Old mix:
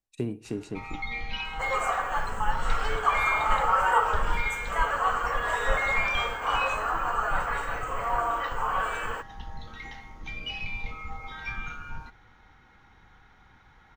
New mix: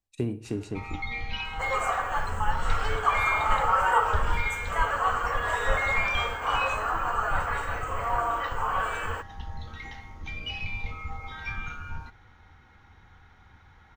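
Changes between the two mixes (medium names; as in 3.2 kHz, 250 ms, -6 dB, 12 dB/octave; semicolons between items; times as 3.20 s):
speech: send +8.0 dB; master: add peaking EQ 84 Hz +11 dB 0.52 oct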